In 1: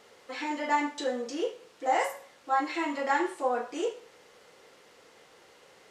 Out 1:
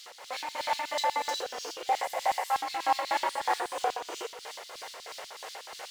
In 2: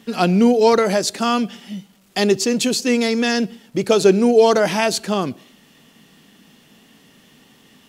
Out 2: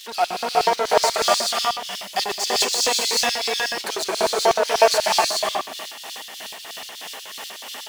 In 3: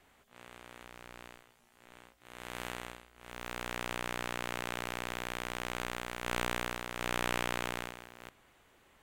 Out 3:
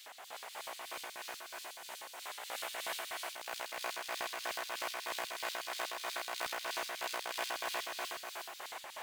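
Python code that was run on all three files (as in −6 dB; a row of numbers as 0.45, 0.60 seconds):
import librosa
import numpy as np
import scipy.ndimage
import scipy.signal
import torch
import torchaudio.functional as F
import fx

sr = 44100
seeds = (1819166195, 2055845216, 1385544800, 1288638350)

y = fx.power_curve(x, sr, exponent=0.5)
y = fx.rev_gated(y, sr, seeds[0], gate_ms=440, shape='rising', drr_db=-2.5)
y = y * (1.0 - 0.36 / 2.0 + 0.36 / 2.0 * np.cos(2.0 * np.pi * 3.1 * (np.arange(len(y)) / sr)))
y = fx.filter_lfo_highpass(y, sr, shape='square', hz=8.2, low_hz=720.0, high_hz=4000.0, q=2.0)
y = y * librosa.db_to_amplitude(-9.5)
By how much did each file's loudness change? −1.5, −3.0, −2.5 LU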